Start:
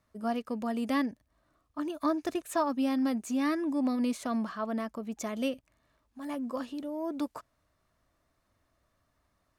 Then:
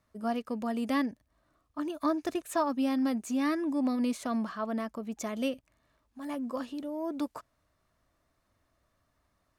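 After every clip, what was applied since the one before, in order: nothing audible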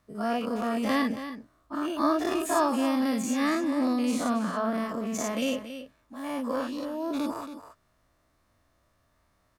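spectral dilation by 0.12 s; echo 0.277 s -11.5 dB

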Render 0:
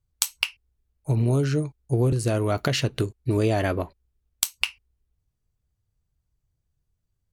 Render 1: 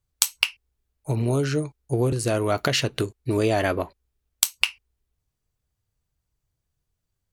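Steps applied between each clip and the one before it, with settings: low shelf 250 Hz -8 dB; gain +3.5 dB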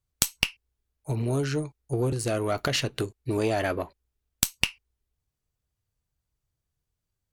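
tube stage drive 6 dB, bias 0.75; gain +1 dB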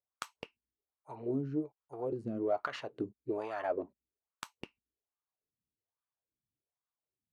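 wah 1.2 Hz 210–1200 Hz, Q 3.3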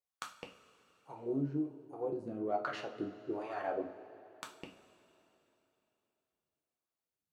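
two-slope reverb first 0.35 s, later 3.3 s, from -18 dB, DRR 1 dB; gain -3.5 dB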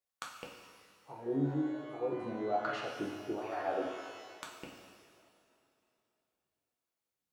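shimmer reverb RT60 1.4 s, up +12 st, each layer -8 dB, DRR 3.5 dB

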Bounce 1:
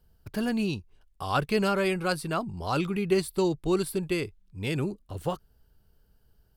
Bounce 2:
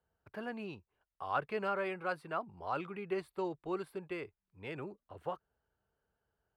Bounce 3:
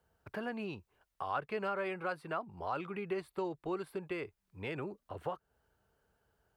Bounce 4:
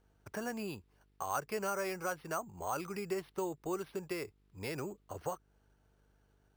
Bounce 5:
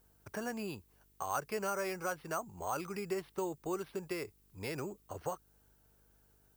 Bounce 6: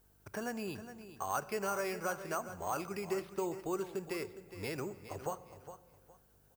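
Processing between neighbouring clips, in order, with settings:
HPF 64 Hz 12 dB/oct; three-band isolator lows -13 dB, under 450 Hz, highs -22 dB, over 2400 Hz; gain -5.5 dB
compressor 2:1, threshold -48 dBFS, peak gain reduction 11 dB; gain +8 dB
buzz 50 Hz, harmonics 9, -71 dBFS -6 dB/oct; sample-and-hold 6×
added noise violet -72 dBFS
feedback echo 0.412 s, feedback 24%, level -12 dB; on a send at -15 dB: reverb RT60 1.6 s, pre-delay 3 ms

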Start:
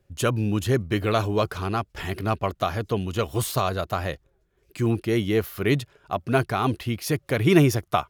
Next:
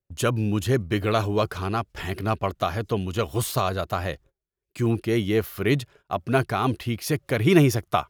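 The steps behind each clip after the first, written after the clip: gate -49 dBFS, range -23 dB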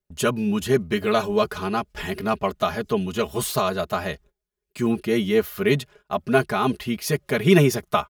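comb 4.8 ms, depth 83%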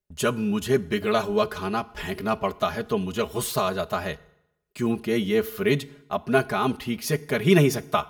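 FDN reverb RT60 0.84 s, low-frequency decay 1×, high-frequency decay 0.85×, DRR 17 dB; gain -2 dB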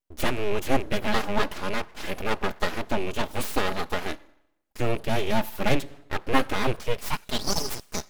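rattling part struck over -32 dBFS, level -26 dBFS; high-pass sweep 130 Hz -> 2800 Hz, 6.75–7.53; full-wave rectifier

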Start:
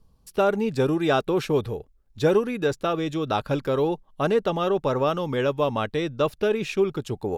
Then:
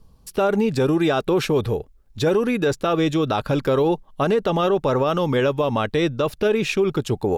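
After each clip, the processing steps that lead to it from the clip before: limiter -19 dBFS, peak gain reduction 9 dB; gain +7.5 dB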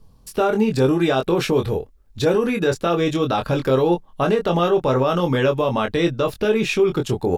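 doubler 23 ms -5 dB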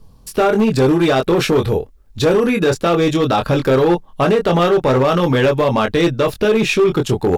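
hard clip -14.5 dBFS, distortion -15 dB; gain +5.5 dB

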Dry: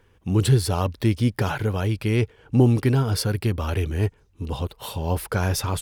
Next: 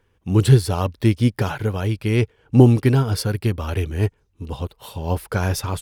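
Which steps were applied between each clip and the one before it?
upward expander 1.5:1, over -35 dBFS; gain +6 dB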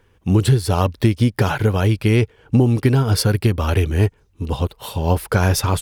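compressor 10:1, threshold -18 dBFS, peak gain reduction 12 dB; gain +7 dB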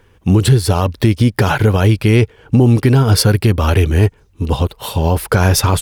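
limiter -9.5 dBFS, peak gain reduction 6 dB; gain +6.5 dB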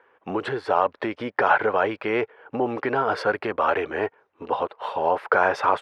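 Butterworth band-pass 980 Hz, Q 0.75

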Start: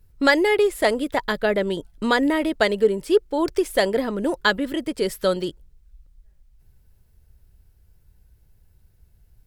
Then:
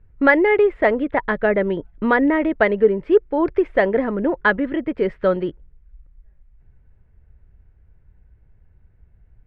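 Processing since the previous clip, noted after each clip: Chebyshev low-pass 2100 Hz, order 3; gain +3.5 dB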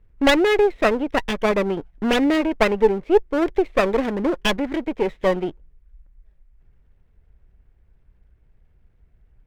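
minimum comb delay 0.37 ms; bell 92 Hz -7 dB 1.8 oct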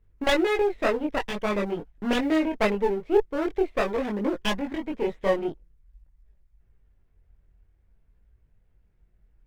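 short-mantissa float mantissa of 6-bit; chorus voices 2, 0.47 Hz, delay 22 ms, depth 3.2 ms; gain -3 dB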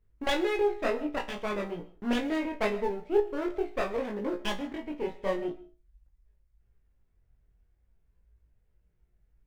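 resonator 59 Hz, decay 0.26 s, harmonics all, mix 80%; on a send at -17.5 dB: reverb RT60 0.25 s, pre-delay 90 ms

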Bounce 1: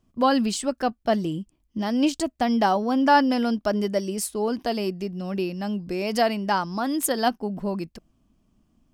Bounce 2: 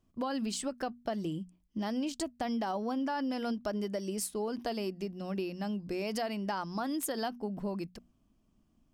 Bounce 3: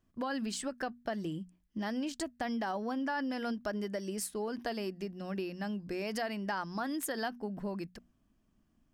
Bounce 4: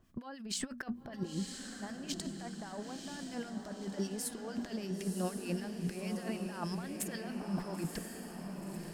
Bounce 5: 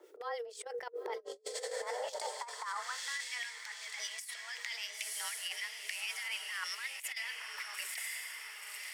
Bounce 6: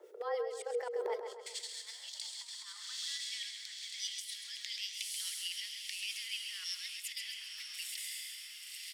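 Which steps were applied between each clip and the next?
notches 60/120/180/240 Hz; limiter -15.5 dBFS, peak gain reduction 7.5 dB; compressor, threshold -25 dBFS, peak gain reduction 6.5 dB; gain -5.5 dB
bell 1700 Hz +8 dB 0.53 oct; gain -2 dB
negative-ratio compressor -41 dBFS, ratio -0.5; harmonic tremolo 6.5 Hz, depth 70%, crossover 1400 Hz; diffused feedback echo 0.994 s, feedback 54%, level -5 dB; gain +5 dB
high-pass sweep 140 Hz -> 1900 Hz, 1.18–3.29; frequency shift +240 Hz; negative-ratio compressor -44 dBFS, ratio -0.5; gain +4 dB
high-pass sweep 470 Hz -> 3600 Hz, 1.1–1.61; feedback echo 0.133 s, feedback 48%, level -8 dB; gain -2.5 dB

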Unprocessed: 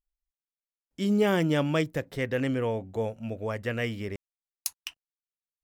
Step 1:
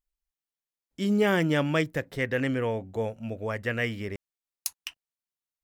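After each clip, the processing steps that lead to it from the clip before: dynamic EQ 1800 Hz, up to +5 dB, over -45 dBFS, Q 1.7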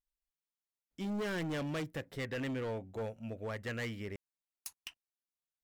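overloaded stage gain 26.5 dB; gain -7.5 dB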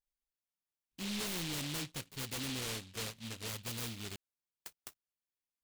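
noise-modulated delay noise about 3200 Hz, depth 0.46 ms; gain -2.5 dB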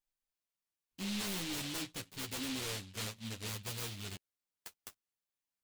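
flange 0.61 Hz, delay 9.4 ms, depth 2 ms, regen -5%; gain +3 dB

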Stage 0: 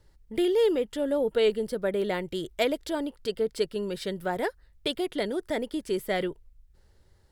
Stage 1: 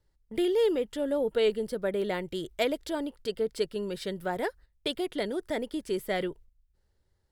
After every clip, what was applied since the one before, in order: gate -47 dBFS, range -10 dB; gain -2 dB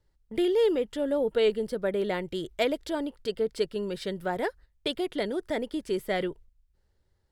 high shelf 8600 Hz -6.5 dB; gain +1.5 dB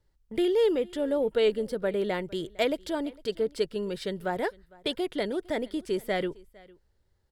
echo 0.456 s -24 dB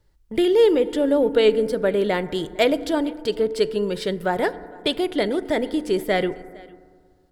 FDN reverb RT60 1.9 s, low-frequency decay 1.2×, high-frequency decay 0.25×, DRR 14 dB; gain +7.5 dB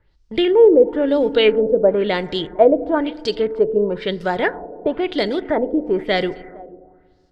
LFO low-pass sine 1 Hz 530–5600 Hz; gain +1.5 dB

